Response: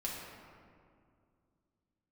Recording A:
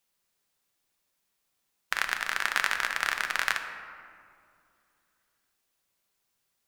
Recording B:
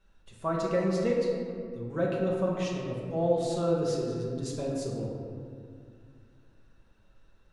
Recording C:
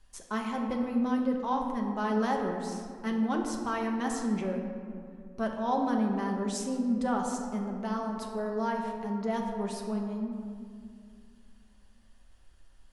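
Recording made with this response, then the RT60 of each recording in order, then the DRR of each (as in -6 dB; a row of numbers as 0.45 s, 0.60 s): B; 2.4 s, 2.3 s, 2.3 s; 5.0 dB, -5.0 dB, 0.5 dB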